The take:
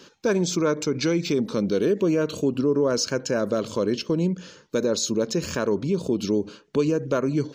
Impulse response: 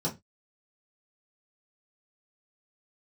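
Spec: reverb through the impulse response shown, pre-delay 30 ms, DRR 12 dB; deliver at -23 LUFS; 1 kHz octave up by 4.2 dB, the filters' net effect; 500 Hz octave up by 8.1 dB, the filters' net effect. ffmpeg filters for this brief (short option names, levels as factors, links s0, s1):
-filter_complex "[0:a]equalizer=f=500:t=o:g=9,equalizer=f=1000:t=o:g=3,asplit=2[s0][s1];[1:a]atrim=start_sample=2205,adelay=30[s2];[s1][s2]afir=irnorm=-1:irlink=0,volume=0.126[s3];[s0][s3]amix=inputs=2:normalize=0,volume=0.531"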